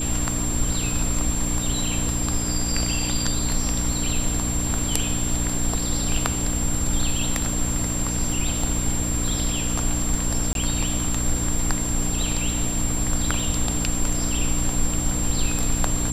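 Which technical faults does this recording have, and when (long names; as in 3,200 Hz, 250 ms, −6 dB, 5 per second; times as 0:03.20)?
surface crackle 18 per second −29 dBFS
mains hum 60 Hz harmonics 5 −28 dBFS
whistle 7,400 Hz −27 dBFS
0:10.53–0:10.55: drop-out 22 ms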